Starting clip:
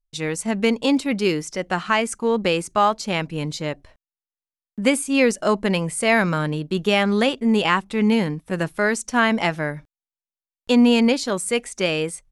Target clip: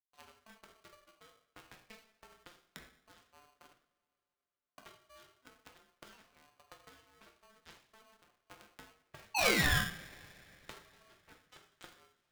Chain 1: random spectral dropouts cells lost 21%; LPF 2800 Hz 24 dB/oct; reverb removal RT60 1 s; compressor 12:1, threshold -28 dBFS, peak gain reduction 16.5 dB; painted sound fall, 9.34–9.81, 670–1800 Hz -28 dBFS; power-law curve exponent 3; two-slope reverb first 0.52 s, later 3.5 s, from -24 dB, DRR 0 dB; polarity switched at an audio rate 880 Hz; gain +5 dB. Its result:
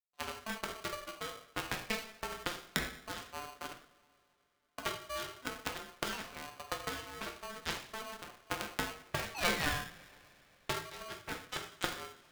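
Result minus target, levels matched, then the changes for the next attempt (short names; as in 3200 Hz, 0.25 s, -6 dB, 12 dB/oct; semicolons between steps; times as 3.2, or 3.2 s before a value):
compressor: peak gain reduction -10 dB
change: compressor 12:1, threshold -39 dBFS, peak gain reduction 26.5 dB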